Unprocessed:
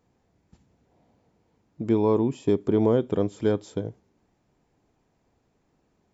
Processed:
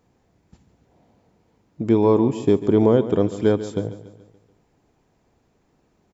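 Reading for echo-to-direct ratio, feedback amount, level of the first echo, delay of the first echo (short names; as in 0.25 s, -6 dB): -13.0 dB, 49%, -14.0 dB, 0.143 s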